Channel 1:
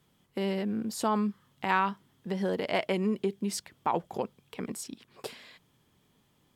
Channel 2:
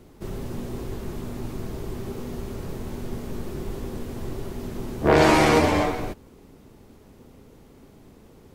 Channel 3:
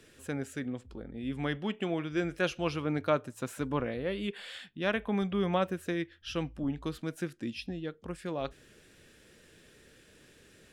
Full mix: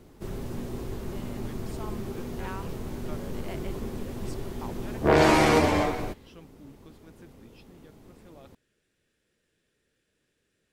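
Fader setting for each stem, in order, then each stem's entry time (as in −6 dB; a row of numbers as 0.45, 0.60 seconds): −14.0, −2.5, −17.0 decibels; 0.75, 0.00, 0.00 seconds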